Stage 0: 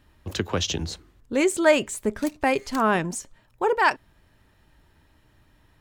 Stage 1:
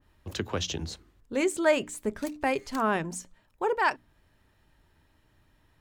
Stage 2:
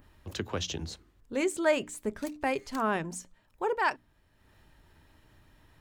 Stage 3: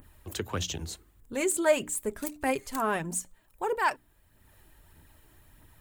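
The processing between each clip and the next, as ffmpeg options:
-af "bandreject=f=60:t=h:w=6,bandreject=f=120:t=h:w=6,bandreject=f=180:t=h:w=6,bandreject=f=240:t=h:w=6,bandreject=f=300:t=h:w=6,adynamicequalizer=threshold=0.0224:dfrequency=2100:dqfactor=0.7:tfrequency=2100:tqfactor=0.7:attack=5:release=100:ratio=0.375:range=2:mode=cutabove:tftype=highshelf,volume=0.562"
-af "acompressor=mode=upward:threshold=0.00398:ratio=2.5,volume=0.75"
-af "aexciter=amount=4.2:drive=4.1:freq=7400,aphaser=in_gain=1:out_gain=1:delay=3.1:decay=0.38:speed=1.6:type=triangular"

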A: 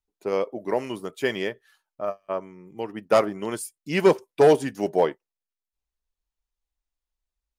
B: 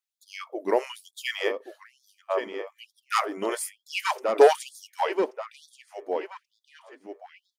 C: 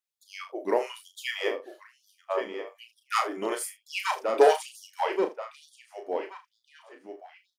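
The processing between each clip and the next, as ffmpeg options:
-filter_complex "[0:a]asplit=2[s0][s1];[s1]adelay=1131,lowpass=f=3400:p=1,volume=0.316,asplit=2[s2][s3];[s3]adelay=1131,lowpass=f=3400:p=1,volume=0.51,asplit=2[s4][s5];[s5]adelay=1131,lowpass=f=3400:p=1,volume=0.51,asplit=2[s6][s7];[s7]adelay=1131,lowpass=f=3400:p=1,volume=0.51,asplit=2[s8][s9];[s9]adelay=1131,lowpass=f=3400:p=1,volume=0.51,asplit=2[s10][s11];[s11]adelay=1131,lowpass=f=3400:p=1,volume=0.51[s12];[s2][s4][s6][s8][s10][s12]amix=inputs=6:normalize=0[s13];[s0][s13]amix=inputs=2:normalize=0,afftfilt=real='re*gte(b*sr/1024,210*pow(3400/210,0.5+0.5*sin(2*PI*1.1*pts/sr)))':imag='im*gte(b*sr/1024,210*pow(3400/210,0.5+0.5*sin(2*PI*1.1*pts/sr)))':win_size=1024:overlap=0.75,volume=1.26"
-af "aecho=1:1:34|76:0.473|0.15,volume=0.75"

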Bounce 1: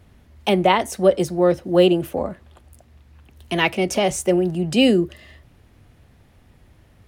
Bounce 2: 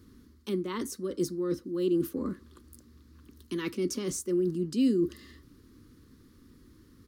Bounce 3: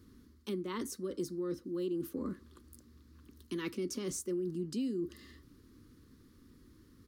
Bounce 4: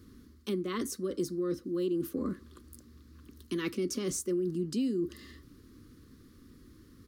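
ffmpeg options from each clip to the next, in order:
-af "areverse,acompressor=threshold=0.0501:ratio=5,areverse,firequalizer=gain_entry='entry(140,0);entry(270,14);entry(480,2);entry(680,-24);entry(1100,5);entry(2500,-6);entry(4400,9);entry(8400,5);entry(14000,9)':delay=0.05:min_phase=1,volume=0.422"
-af "acompressor=threshold=0.0355:ratio=6,volume=0.668"
-af "asuperstop=centerf=910:order=4:qfactor=6.5,volume=1.68"

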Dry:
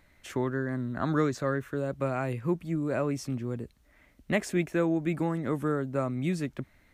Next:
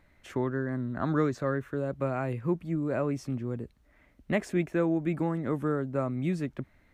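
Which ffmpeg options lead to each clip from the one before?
-af "highshelf=f=3000:g=-8.5"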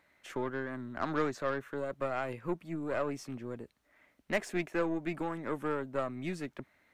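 -af "highpass=f=580:p=1,aeval=exprs='0.15*(cos(1*acos(clip(val(0)/0.15,-1,1)))-cos(1*PI/2))+0.00944*(cos(8*acos(clip(val(0)/0.15,-1,1)))-cos(8*PI/2))':c=same"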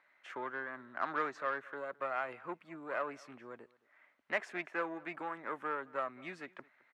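-filter_complex "[0:a]bandpass=f=1400:t=q:w=0.96:csg=0,asplit=2[s0][s1];[s1]adelay=215.7,volume=0.0708,highshelf=f=4000:g=-4.85[s2];[s0][s2]amix=inputs=2:normalize=0,volume=1.19"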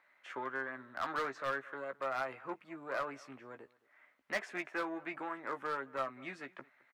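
-filter_complex "[0:a]volume=29.9,asoftclip=hard,volume=0.0335,asplit=2[s0][s1];[s1]adelay=15,volume=0.398[s2];[s0][s2]amix=inputs=2:normalize=0"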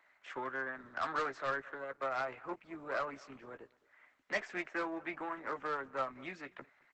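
-filter_complex "[0:a]acrossover=split=140|520|4000[s0][s1][s2][s3];[s0]acrusher=samples=40:mix=1:aa=0.000001:lfo=1:lforange=24:lforate=2.3[s4];[s4][s1][s2][s3]amix=inputs=4:normalize=0,volume=1.19" -ar 48000 -c:a libopus -b:a 12k

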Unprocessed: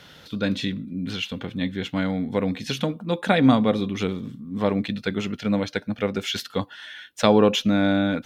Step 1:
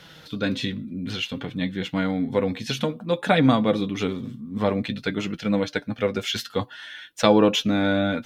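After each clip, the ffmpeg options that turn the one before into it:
-af "flanger=delay=6:depth=2.7:regen=44:speed=0.55:shape=sinusoidal,volume=1.68"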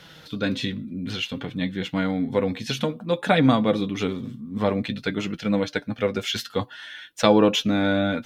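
-af anull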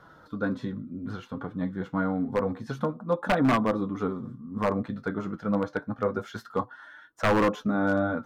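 -af "flanger=delay=2.9:depth=8.6:regen=-64:speed=0.28:shape=sinusoidal,highshelf=f=1800:t=q:w=3:g=-13,aeval=exprs='0.168*(abs(mod(val(0)/0.168+3,4)-2)-1)':c=same"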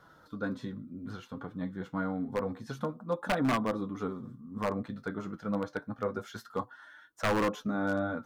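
-af "highshelf=f=4200:g=8.5,volume=0.501"

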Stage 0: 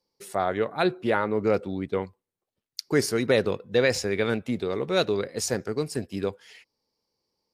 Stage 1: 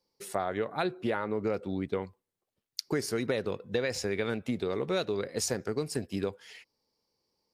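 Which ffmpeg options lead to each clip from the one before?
-af "acompressor=threshold=0.0447:ratio=6"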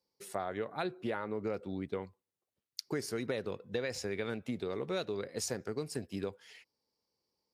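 -af "highpass=44,volume=0.531"

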